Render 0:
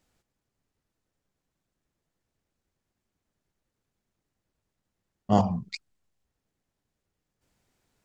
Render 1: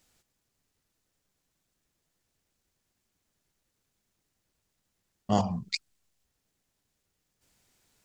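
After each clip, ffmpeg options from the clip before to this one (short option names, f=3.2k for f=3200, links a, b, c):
-filter_complex "[0:a]asplit=2[a][b];[b]acompressor=threshold=-30dB:ratio=6,volume=0.5dB[c];[a][c]amix=inputs=2:normalize=0,highshelf=f=2.3k:g=9.5,volume=-6.5dB"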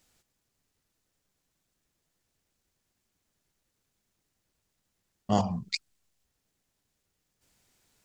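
-af anull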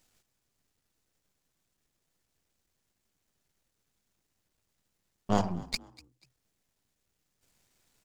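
-filter_complex "[0:a]aeval=exprs='if(lt(val(0),0),0.251*val(0),val(0))':c=same,asplit=3[a][b][c];[b]adelay=244,afreqshift=62,volume=-21.5dB[d];[c]adelay=488,afreqshift=124,volume=-30.9dB[e];[a][d][e]amix=inputs=3:normalize=0,volume=1.5dB"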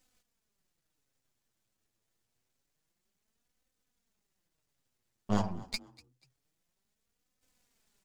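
-af "flanger=delay=3.9:depth=5.4:regen=18:speed=0.27:shape=sinusoidal"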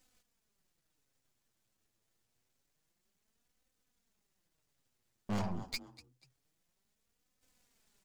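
-af "asoftclip=type=hard:threshold=-31.5dB,volume=1dB"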